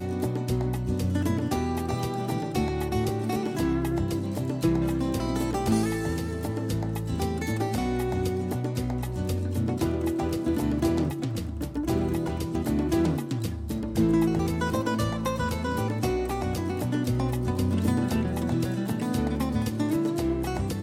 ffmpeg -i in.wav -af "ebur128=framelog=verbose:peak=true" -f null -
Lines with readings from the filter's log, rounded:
Integrated loudness:
  I:         -27.6 LUFS
  Threshold: -37.6 LUFS
Loudness range:
  LRA:         1.7 LU
  Threshold: -47.6 LUFS
  LRA low:   -28.4 LUFS
  LRA high:  -26.7 LUFS
True peak:
  Peak:      -12.2 dBFS